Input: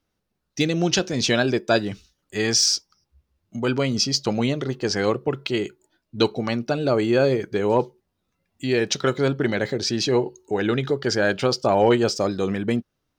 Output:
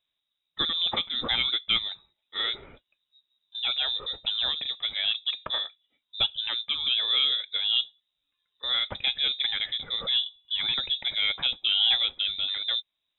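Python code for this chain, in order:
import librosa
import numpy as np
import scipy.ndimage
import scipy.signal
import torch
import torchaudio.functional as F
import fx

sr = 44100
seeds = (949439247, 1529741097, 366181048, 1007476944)

y = fx.freq_invert(x, sr, carrier_hz=3800)
y = F.gain(torch.from_numpy(y), -6.0).numpy()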